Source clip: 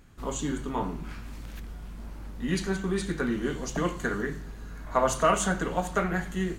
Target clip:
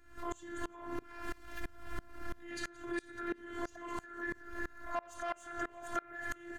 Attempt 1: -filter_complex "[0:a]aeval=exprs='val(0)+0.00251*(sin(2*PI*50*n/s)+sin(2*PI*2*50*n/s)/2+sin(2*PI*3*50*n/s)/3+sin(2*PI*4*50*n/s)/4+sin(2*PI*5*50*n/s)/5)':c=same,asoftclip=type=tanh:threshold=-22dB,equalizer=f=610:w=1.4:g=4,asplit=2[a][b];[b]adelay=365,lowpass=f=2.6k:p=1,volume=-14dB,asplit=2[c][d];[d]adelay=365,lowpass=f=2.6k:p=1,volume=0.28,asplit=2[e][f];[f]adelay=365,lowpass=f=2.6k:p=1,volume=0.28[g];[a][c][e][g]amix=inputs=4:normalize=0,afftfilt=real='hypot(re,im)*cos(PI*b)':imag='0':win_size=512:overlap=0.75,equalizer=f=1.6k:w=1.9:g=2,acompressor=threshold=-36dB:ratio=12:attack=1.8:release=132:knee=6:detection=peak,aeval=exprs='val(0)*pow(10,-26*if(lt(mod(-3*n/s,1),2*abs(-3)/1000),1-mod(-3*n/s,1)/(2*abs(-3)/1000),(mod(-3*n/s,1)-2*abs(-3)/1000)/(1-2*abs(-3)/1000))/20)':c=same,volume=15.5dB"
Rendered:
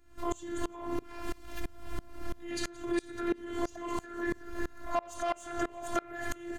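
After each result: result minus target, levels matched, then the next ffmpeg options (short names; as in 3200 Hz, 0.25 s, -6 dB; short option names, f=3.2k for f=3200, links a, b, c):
compressor: peak gain reduction -8.5 dB; 2000 Hz band -5.5 dB
-filter_complex "[0:a]aeval=exprs='val(0)+0.00251*(sin(2*PI*50*n/s)+sin(2*PI*2*50*n/s)/2+sin(2*PI*3*50*n/s)/3+sin(2*PI*4*50*n/s)/4+sin(2*PI*5*50*n/s)/5)':c=same,asoftclip=type=tanh:threshold=-22dB,equalizer=f=610:w=1.4:g=4,asplit=2[a][b];[b]adelay=365,lowpass=f=2.6k:p=1,volume=-14dB,asplit=2[c][d];[d]adelay=365,lowpass=f=2.6k:p=1,volume=0.28,asplit=2[e][f];[f]adelay=365,lowpass=f=2.6k:p=1,volume=0.28[g];[a][c][e][g]amix=inputs=4:normalize=0,afftfilt=real='hypot(re,im)*cos(PI*b)':imag='0':win_size=512:overlap=0.75,equalizer=f=1.6k:w=1.9:g=2,acompressor=threshold=-43.5dB:ratio=12:attack=1.8:release=132:knee=6:detection=peak,aeval=exprs='val(0)*pow(10,-26*if(lt(mod(-3*n/s,1),2*abs(-3)/1000),1-mod(-3*n/s,1)/(2*abs(-3)/1000),(mod(-3*n/s,1)-2*abs(-3)/1000)/(1-2*abs(-3)/1000))/20)':c=same,volume=15.5dB"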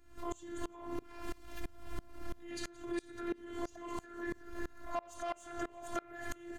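2000 Hz band -5.0 dB
-filter_complex "[0:a]aeval=exprs='val(0)+0.00251*(sin(2*PI*50*n/s)+sin(2*PI*2*50*n/s)/2+sin(2*PI*3*50*n/s)/3+sin(2*PI*4*50*n/s)/4+sin(2*PI*5*50*n/s)/5)':c=same,asoftclip=type=tanh:threshold=-22dB,equalizer=f=610:w=1.4:g=4,asplit=2[a][b];[b]adelay=365,lowpass=f=2.6k:p=1,volume=-14dB,asplit=2[c][d];[d]adelay=365,lowpass=f=2.6k:p=1,volume=0.28,asplit=2[e][f];[f]adelay=365,lowpass=f=2.6k:p=1,volume=0.28[g];[a][c][e][g]amix=inputs=4:normalize=0,afftfilt=real='hypot(re,im)*cos(PI*b)':imag='0':win_size=512:overlap=0.75,equalizer=f=1.6k:w=1.9:g=12.5,acompressor=threshold=-43.5dB:ratio=12:attack=1.8:release=132:knee=6:detection=peak,aeval=exprs='val(0)*pow(10,-26*if(lt(mod(-3*n/s,1),2*abs(-3)/1000),1-mod(-3*n/s,1)/(2*abs(-3)/1000),(mod(-3*n/s,1)-2*abs(-3)/1000)/(1-2*abs(-3)/1000))/20)':c=same,volume=15.5dB"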